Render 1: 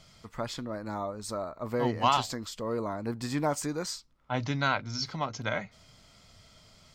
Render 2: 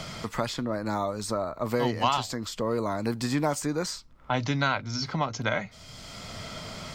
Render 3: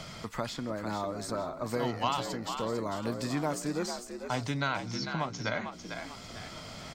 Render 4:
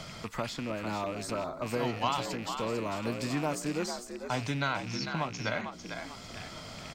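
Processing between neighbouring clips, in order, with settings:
multiband upward and downward compressor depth 70%; level +3.5 dB
echo with shifted repeats 449 ms, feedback 38%, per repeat +62 Hz, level −7.5 dB; level −5.5 dB
loose part that buzzes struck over −42 dBFS, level −33 dBFS

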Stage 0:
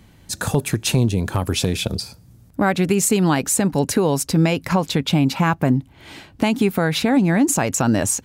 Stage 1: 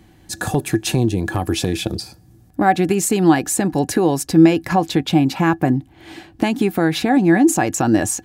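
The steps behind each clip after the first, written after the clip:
hollow resonant body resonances 330/750/1,700 Hz, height 14 dB, ringing for 95 ms
level −1.5 dB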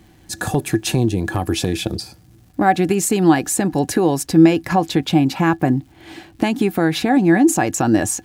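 surface crackle 450 per second −47 dBFS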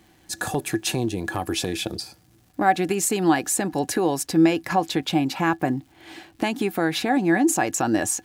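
low-shelf EQ 250 Hz −10 dB
level −2.5 dB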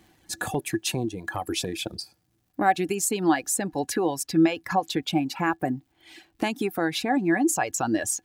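reverb reduction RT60 1.9 s
level −2 dB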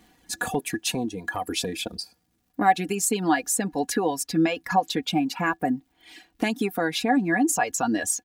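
comb filter 4.2 ms, depth 57%

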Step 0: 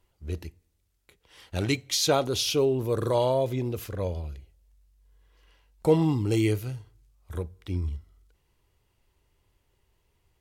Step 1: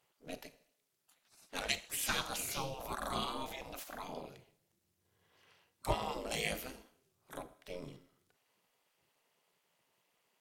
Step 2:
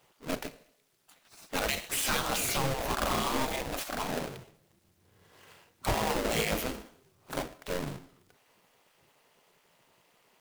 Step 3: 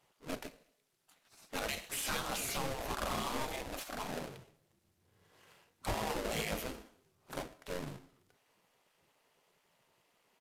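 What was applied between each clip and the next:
four-comb reverb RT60 0.68 s, combs from 26 ms, DRR 14 dB; amplitude modulation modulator 270 Hz, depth 65%; gate on every frequency bin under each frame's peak −15 dB weak; level +2.5 dB
each half-wave held at its own peak; brickwall limiter −28.5 dBFS, peak gain reduction 10.5 dB; level +7 dB
flanger 0.31 Hz, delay 0.9 ms, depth 8 ms, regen −78%; downsampling to 32,000 Hz; level −2.5 dB

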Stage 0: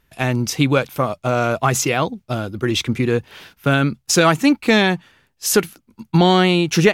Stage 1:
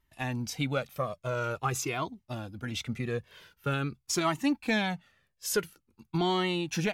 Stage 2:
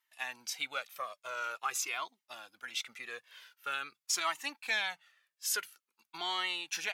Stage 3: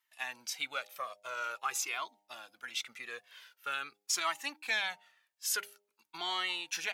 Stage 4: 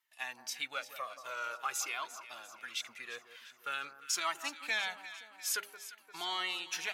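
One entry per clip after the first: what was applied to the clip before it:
flanger whose copies keep moving one way falling 0.47 Hz; level −9 dB
high-pass filter 1,200 Hz 12 dB per octave
hum removal 102 Hz, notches 9
delay that swaps between a low-pass and a high-pass 174 ms, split 1,300 Hz, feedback 72%, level −11 dB; level −1.5 dB

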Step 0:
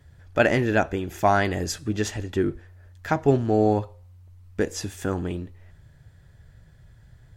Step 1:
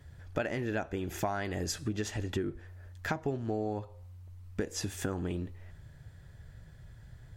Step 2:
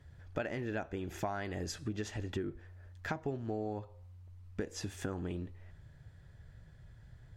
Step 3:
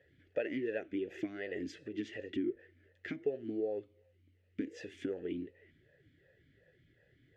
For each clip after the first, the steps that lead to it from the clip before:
downward compressor 8 to 1, threshold −30 dBFS, peak gain reduction 16.5 dB
high-shelf EQ 8,900 Hz −10 dB; level −4 dB
formant filter swept between two vowels e-i 2.7 Hz; level +11 dB

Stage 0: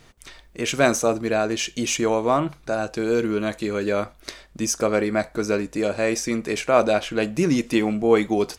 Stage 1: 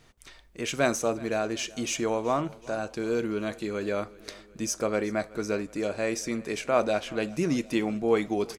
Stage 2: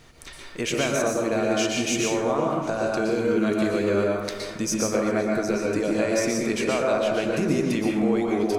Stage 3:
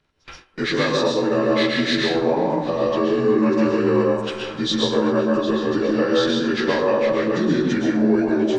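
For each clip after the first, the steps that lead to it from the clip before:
repeating echo 376 ms, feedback 58%, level −21.5 dB; level −6.5 dB
downward compressor, threshold −31 dBFS, peak gain reduction 12.5 dB; dense smooth reverb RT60 1 s, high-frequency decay 0.45×, pre-delay 105 ms, DRR −2 dB; level +7 dB
partials spread apart or drawn together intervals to 85%; noise gate with hold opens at −32 dBFS; level +6 dB

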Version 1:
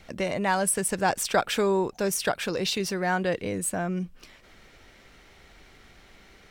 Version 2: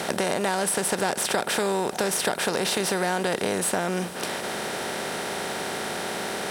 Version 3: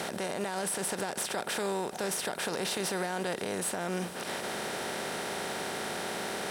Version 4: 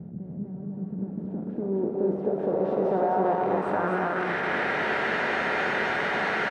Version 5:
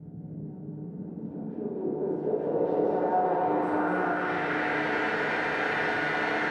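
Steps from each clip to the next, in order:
compressor on every frequency bin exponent 0.4; high-pass filter 110 Hz 12 dB per octave; downward compressor, threshold −21 dBFS, peak gain reduction 7.5 dB
brickwall limiter −18 dBFS, peak gain reduction 10.5 dB; level −5 dB
low-pass filter sweep 150 Hz → 1,900 Hz, 0:00.65–0:04.41; on a send: loudspeakers that aren't time-aligned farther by 16 metres −11 dB, 87 metres −2 dB; on the sum: reverb with rising layers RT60 3.6 s, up +7 semitones, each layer −8 dB, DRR 5 dB; level +3 dB
feedback delay network reverb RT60 0.92 s, low-frequency decay 0.9×, high-frequency decay 0.85×, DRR −4.5 dB; level −7.5 dB

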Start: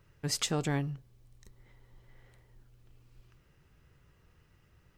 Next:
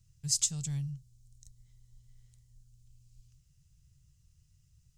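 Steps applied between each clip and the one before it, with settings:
drawn EQ curve 140 Hz 0 dB, 310 Hz −27 dB, 1,700 Hz −22 dB, 7,100 Hz +9 dB, 14,000 Hz −4 dB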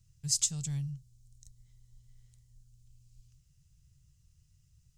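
no processing that can be heard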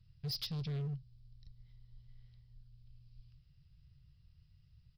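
downsampling to 11,025 Hz
hard clipping −37 dBFS, distortion −10 dB
level +1.5 dB

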